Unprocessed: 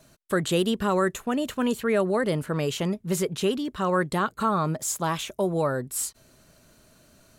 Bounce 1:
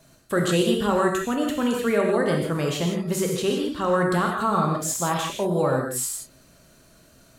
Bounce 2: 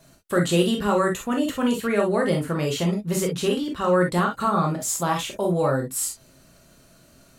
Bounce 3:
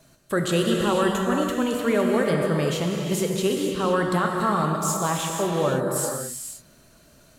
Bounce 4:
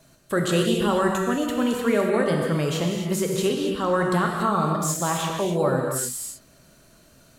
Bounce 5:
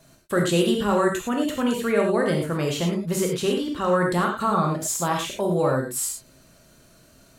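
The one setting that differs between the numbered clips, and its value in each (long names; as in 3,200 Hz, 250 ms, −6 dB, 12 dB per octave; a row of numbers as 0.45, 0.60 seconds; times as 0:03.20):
reverb whose tail is shaped and stops, gate: 190, 80, 540, 310, 130 milliseconds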